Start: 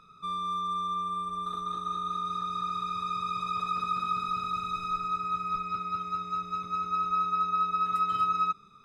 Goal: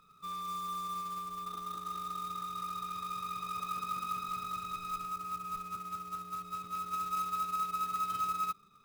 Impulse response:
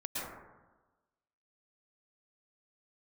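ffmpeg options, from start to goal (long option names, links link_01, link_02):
-filter_complex "[0:a]asettb=1/sr,asplit=3[link_01][link_02][link_03];[link_01]atrim=end=5.054[link_04];[link_02]atrim=start=5.05:end=6.45,asetpts=PTS-STARTPTS,afade=type=in:duration=0.004:curve=qsin,afade=type=out:start_time=1.396:duration=0.004:curve=qsin,lowpass=frequency=2100:poles=1[link_05];[link_03]atrim=start=6.446[link_06];[link_04][link_05]acrossfade=duration=0.004:curve1=hsin:curve2=qsin[link_07];[link_07][link_06]acrossfade=duration=0.004:curve1=qsin:curve2=hsin,acrusher=bits=3:mode=log:mix=0:aa=0.000001,volume=-7dB"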